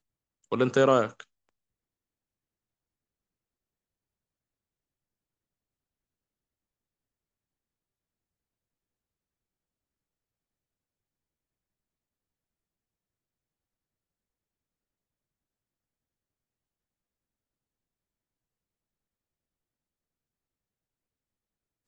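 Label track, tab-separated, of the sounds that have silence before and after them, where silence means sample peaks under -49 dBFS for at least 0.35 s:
0.520000	1.230000	sound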